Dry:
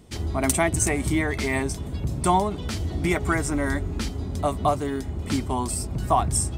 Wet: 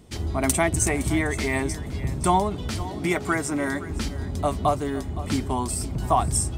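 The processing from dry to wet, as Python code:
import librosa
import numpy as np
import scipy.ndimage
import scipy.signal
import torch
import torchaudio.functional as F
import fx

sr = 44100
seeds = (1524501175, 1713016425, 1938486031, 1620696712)

p1 = fx.highpass(x, sr, hz=150.0, slope=12, at=(2.83, 3.9))
y = p1 + fx.echo_single(p1, sr, ms=515, db=-16.0, dry=0)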